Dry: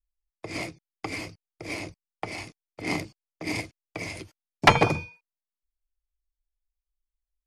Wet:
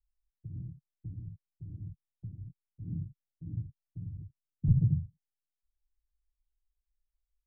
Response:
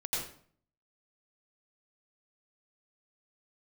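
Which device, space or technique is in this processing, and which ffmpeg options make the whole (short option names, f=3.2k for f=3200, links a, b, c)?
the neighbour's flat through the wall: -af "lowpass=f=150:w=0.5412,lowpass=f=150:w=1.3066,equalizer=f=140:t=o:w=0.77:g=3.5,volume=2.5dB"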